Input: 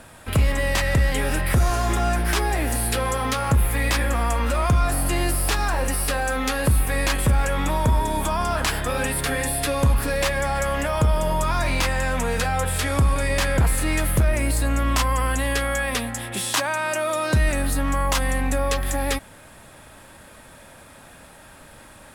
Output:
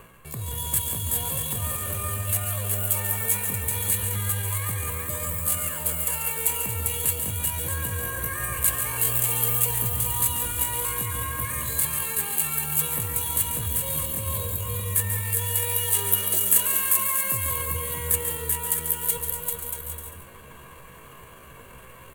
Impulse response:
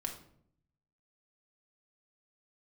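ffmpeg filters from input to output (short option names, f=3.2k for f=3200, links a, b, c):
-filter_complex "[0:a]adynamicsmooth=sensitivity=4.5:basefreq=1.1k,aecho=1:1:3.1:0.45,areverse,acompressor=threshold=-32dB:ratio=5,areverse,equalizer=f=11k:t=o:w=0.96:g=-6.5,aecho=1:1:380|627|787.6|891.9|959.7:0.631|0.398|0.251|0.158|0.1,asetrate=76340,aresample=44100,atempo=0.577676,asplit=2[a][b];[1:a]atrim=start_sample=2205,adelay=140[c];[b][c]afir=irnorm=-1:irlink=0,volume=-7dB[d];[a][d]amix=inputs=2:normalize=0,aexciter=amount=14.6:drive=9.7:freq=8.3k,volume=-1.5dB"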